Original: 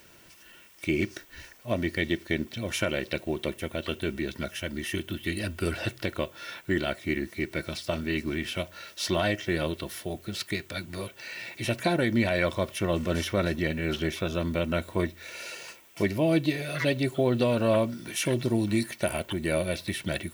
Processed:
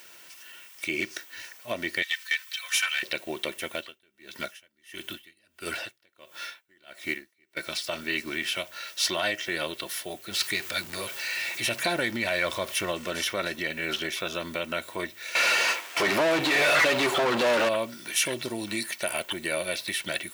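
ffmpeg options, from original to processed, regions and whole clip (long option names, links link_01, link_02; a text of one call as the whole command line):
ffmpeg -i in.wav -filter_complex "[0:a]asettb=1/sr,asplit=3[link_01][link_02][link_03];[link_01]atrim=end=2.024[link_04];[link_02]atrim=start=2.02:end=3.03,asetpts=PTS-STARTPTS,afade=type=in:duration=0.004:curve=qsin,afade=type=out:start_time=1.006:duration=0.004:curve=qsin,highpass=frequency=1200:width=0.5412,highpass=frequency=1200:width=1.3066,aecho=1:1:3.9:0.8,atrim=end_sample=44541,aeval=exprs='(tanh(8.91*val(0)+0.25)-tanh(0.25))/8.91':channel_layout=same[link_05];[link_03]atrim=start=3.026[link_06];[link_04][link_05]acrossfade=duration=0.004:curve1=hsin:curve2=qsin[link_07];[link_07][link_06]acrossfade=duration=0.004:curve1=qsin:curve2=hsin,asettb=1/sr,asplit=3[link_08][link_09][link_10];[link_08]atrim=end=3.744[link_11];[link_09]atrim=start=3.74:end=7.57,asetpts=PTS-STARTPTS,afade=type=in:duration=0.004:curve=qsin,afade=type=out:start_time=3.826:duration=0.004:curve=qsin,acrusher=bits=7:mode=log:mix=0:aa=0.000001,aeval=exprs='val(0)*pow(10,-36*(0.5-0.5*cos(2*PI*1.5*n/s))/20)':channel_layout=same[link_12];[link_10]atrim=start=7.566[link_13];[link_11][link_12]acrossfade=duration=0.004:curve1=hsin:curve2=qsin[link_14];[link_14][link_13]acrossfade=duration=0.004:curve1=qsin:curve2=hsin,asettb=1/sr,asplit=3[link_15][link_16][link_17];[link_15]atrim=end=10.314[link_18];[link_16]atrim=start=10.31:end=12.92,asetpts=PTS-STARTPTS,afade=type=in:duration=0.004:curve=qsin,afade=type=out:start_time=2.606:duration=0.004:curve=qsin,aeval=exprs='val(0)+0.5*0.01*sgn(val(0))':channel_layout=same,lowshelf=frequency=77:gain=11.5[link_19];[link_17]atrim=start=12.916[link_20];[link_18][link_19]acrossfade=duration=0.004:curve1=hsin:curve2=qsin[link_21];[link_21][link_20]acrossfade=duration=0.004:curve1=qsin:curve2=hsin,asettb=1/sr,asplit=3[link_22][link_23][link_24];[link_22]atrim=end=15.354[link_25];[link_23]atrim=start=15.35:end=17.69,asetpts=PTS-STARTPTS,afade=type=in:duration=0.004:curve=qsin,afade=type=out:start_time=2.336:duration=0.004:curve=qsin,aeval=exprs='sgn(val(0))*max(abs(val(0))-0.00126,0)':channel_layout=same,asplit=2[link_26][link_27];[link_27]highpass=frequency=720:poles=1,volume=36dB,asoftclip=type=tanh:threshold=-12.5dB[link_28];[link_26][link_28]amix=inputs=2:normalize=0,lowpass=frequency=1200:poles=1,volume=-6dB[link_29];[link_24]atrim=start=17.686[link_30];[link_25][link_29]acrossfade=duration=0.004:curve1=hsin:curve2=qsin[link_31];[link_31][link_30]acrossfade=duration=0.004:curve1=qsin:curve2=hsin,alimiter=limit=-16.5dB:level=0:latency=1:release=133,highpass=frequency=1200:poles=1,volume=6.5dB" out.wav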